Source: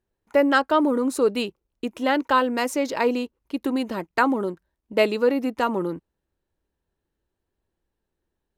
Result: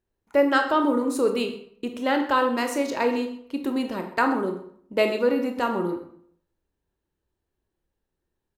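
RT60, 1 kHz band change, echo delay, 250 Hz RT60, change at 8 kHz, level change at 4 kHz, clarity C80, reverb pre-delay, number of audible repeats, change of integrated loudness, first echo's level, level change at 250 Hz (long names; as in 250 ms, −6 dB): 0.60 s, −1.0 dB, 126 ms, 0.70 s, −1.5 dB, −1.5 dB, 11.0 dB, 21 ms, 1, −1.0 dB, −17.5 dB, −1.0 dB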